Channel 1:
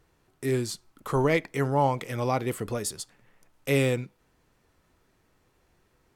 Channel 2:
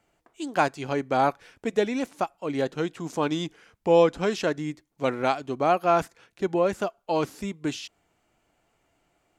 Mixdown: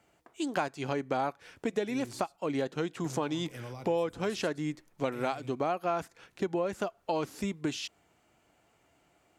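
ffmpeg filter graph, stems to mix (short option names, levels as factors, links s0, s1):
-filter_complex "[0:a]acrossover=split=180|3000[s0][s1][s2];[s1]acompressor=threshold=0.0282:ratio=6[s3];[s0][s3][s2]amix=inputs=3:normalize=0,alimiter=level_in=1.33:limit=0.0631:level=0:latency=1,volume=0.75,adelay=1450,volume=0.447,asplit=3[s4][s5][s6];[s4]atrim=end=2.25,asetpts=PTS-STARTPTS,afade=t=out:st=2.246:d=0.004:c=hsin[s7];[s5]atrim=start=2.25:end=3.04,asetpts=PTS-STARTPTS,volume=0[s8];[s6]atrim=start=3.04,asetpts=PTS-STARTPTS,afade=t=in:d=0.004:c=hsin[s9];[s7][s8][s9]concat=n=3:v=0:a=1,asplit=2[s10][s11];[s11]volume=0.237[s12];[1:a]highpass=55,volume=1.26[s13];[s12]aecho=0:1:114:1[s14];[s10][s13][s14]amix=inputs=3:normalize=0,acompressor=threshold=0.0355:ratio=4"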